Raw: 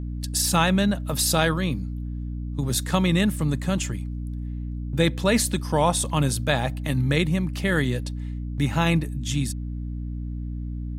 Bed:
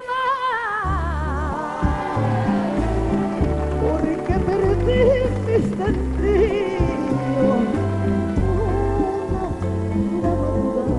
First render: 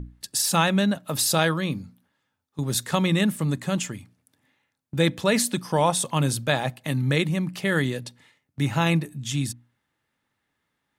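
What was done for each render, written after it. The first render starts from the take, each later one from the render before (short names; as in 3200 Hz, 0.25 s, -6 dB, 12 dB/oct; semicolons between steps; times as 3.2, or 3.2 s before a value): notches 60/120/180/240/300 Hz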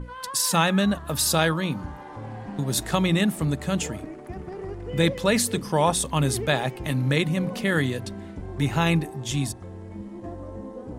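add bed -16.5 dB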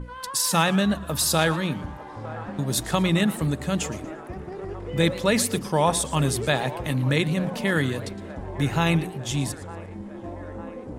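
band-limited delay 0.904 s, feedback 71%, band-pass 790 Hz, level -15 dB; warbling echo 0.116 s, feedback 32%, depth 188 cents, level -17 dB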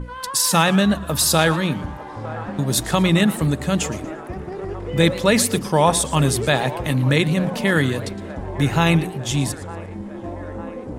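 gain +5 dB; limiter -2 dBFS, peak gain reduction 1.5 dB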